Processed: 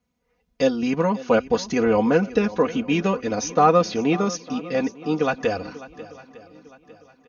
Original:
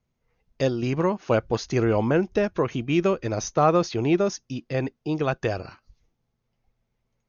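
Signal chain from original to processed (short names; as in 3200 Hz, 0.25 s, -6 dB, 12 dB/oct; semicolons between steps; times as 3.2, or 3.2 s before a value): HPF 63 Hz; comb 4.1 ms, depth 86%; on a send: swung echo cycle 0.903 s, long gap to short 1.5:1, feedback 35%, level -17.5 dB; on the sum: gain +1 dB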